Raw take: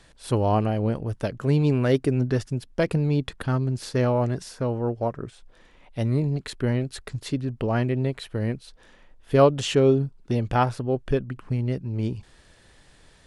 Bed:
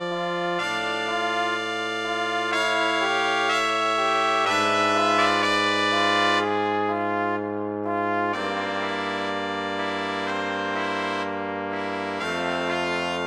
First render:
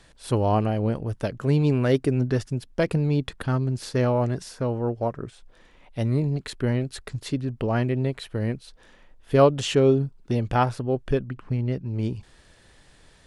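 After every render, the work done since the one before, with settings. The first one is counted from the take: 11.28–11.86 air absorption 59 m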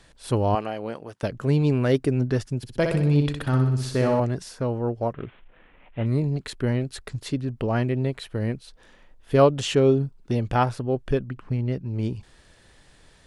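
0.55–1.23 weighting filter A; 2.57–4.2 flutter echo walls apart 10.6 m, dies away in 0.69 s; 5.13–6.06 CVSD 16 kbps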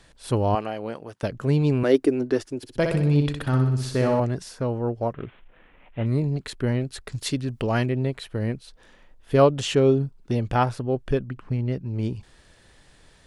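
1.83–2.75 resonant low shelf 230 Hz -9.5 dB, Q 3; 7.12–7.86 high shelf 2100 Hz +9.5 dB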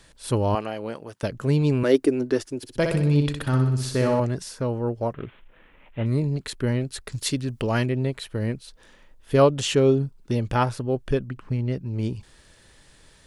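high shelf 5300 Hz +6 dB; notch 730 Hz, Q 12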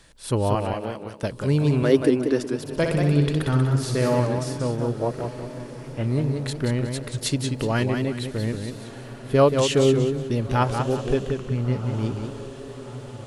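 diffused feedback echo 1.334 s, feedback 55%, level -15.5 dB; warbling echo 0.184 s, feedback 33%, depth 116 cents, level -6 dB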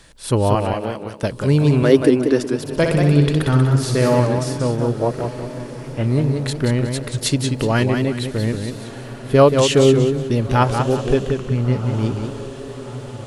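gain +5.5 dB; limiter -1 dBFS, peak gain reduction 1 dB

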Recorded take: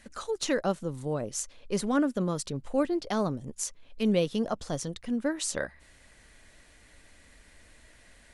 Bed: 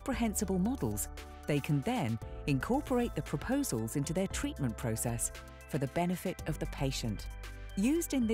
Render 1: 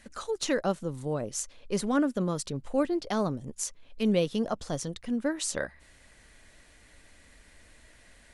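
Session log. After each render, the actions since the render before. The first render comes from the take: nothing audible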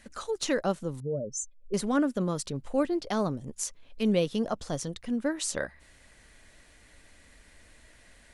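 1–1.74 spectral contrast raised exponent 2.8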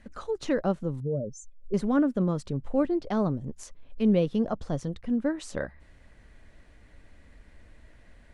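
LPF 1600 Hz 6 dB/oct; low shelf 250 Hz +6.5 dB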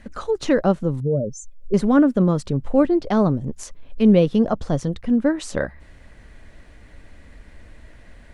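gain +8.5 dB

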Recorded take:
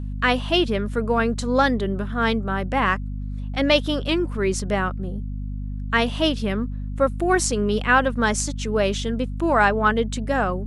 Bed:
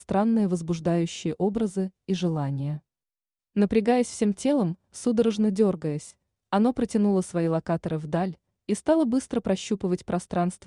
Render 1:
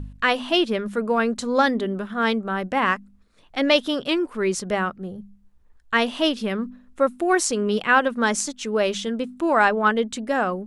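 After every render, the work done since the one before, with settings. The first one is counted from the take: de-hum 50 Hz, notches 5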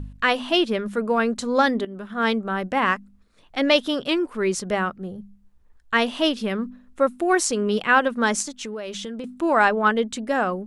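1.85–2.25 fade in linear, from -14.5 dB; 8.42–9.24 compressor 10:1, threshold -28 dBFS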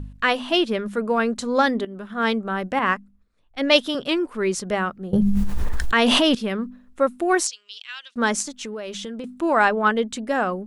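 2.79–3.95 three-band expander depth 70%; 5.13–6.35 fast leveller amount 100%; 7.47–8.16 Butterworth band-pass 4600 Hz, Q 1.3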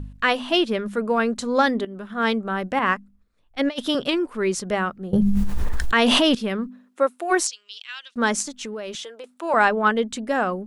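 3.59–4.14 negative-ratio compressor -22 dBFS, ratio -0.5; 6.67–7.3 HPF 130 Hz -> 520 Hz 24 dB/oct; 8.95–9.54 HPF 440 Hz 24 dB/oct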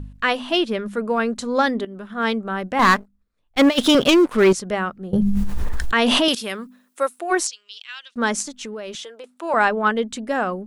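2.79–4.53 sample leveller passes 3; 6.28–7.19 RIAA curve recording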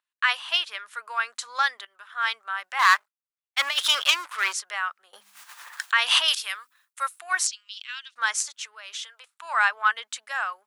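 HPF 1100 Hz 24 dB/oct; gate with hold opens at -51 dBFS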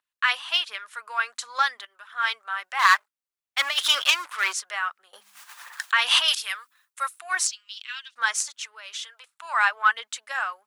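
phaser 1.4 Hz, delay 4.2 ms, feedback 32%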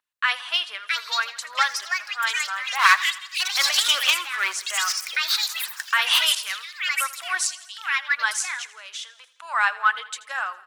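echoes that change speed 0.724 s, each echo +5 st, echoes 3; feedback echo 82 ms, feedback 59%, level -18 dB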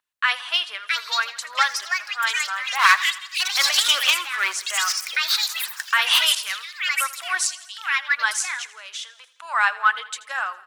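gain +1.5 dB; limiter -3 dBFS, peak gain reduction 2 dB

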